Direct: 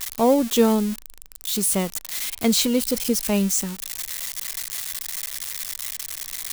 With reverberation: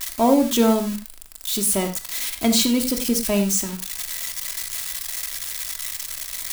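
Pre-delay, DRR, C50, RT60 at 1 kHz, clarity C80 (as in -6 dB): 3 ms, 2.5 dB, 9.0 dB, n/a, 13.0 dB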